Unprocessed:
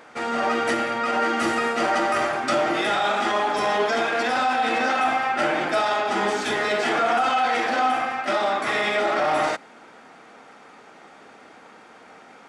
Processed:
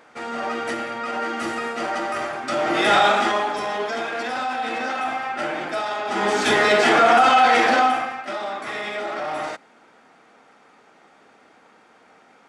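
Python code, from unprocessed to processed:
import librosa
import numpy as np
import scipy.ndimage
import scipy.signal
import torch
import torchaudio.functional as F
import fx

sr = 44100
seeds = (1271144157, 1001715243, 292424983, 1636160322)

y = fx.gain(x, sr, db=fx.line((2.47, -4.0), (2.97, 7.5), (3.65, -4.0), (5.99, -4.0), (6.48, 6.5), (7.71, 6.5), (8.26, -6.0)))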